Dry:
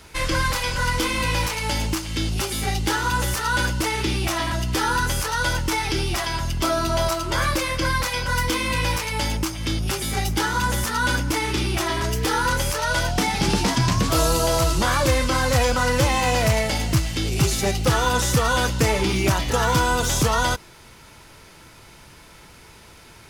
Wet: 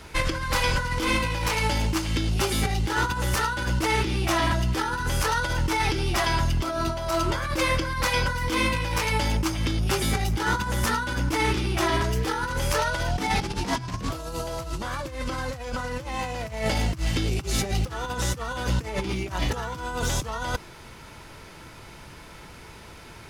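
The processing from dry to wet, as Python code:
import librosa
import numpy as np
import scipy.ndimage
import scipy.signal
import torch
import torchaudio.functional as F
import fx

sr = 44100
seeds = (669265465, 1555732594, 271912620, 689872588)

y = fx.high_shelf(x, sr, hz=3800.0, db=-6.5)
y = fx.over_compress(y, sr, threshold_db=-25.0, ratio=-0.5)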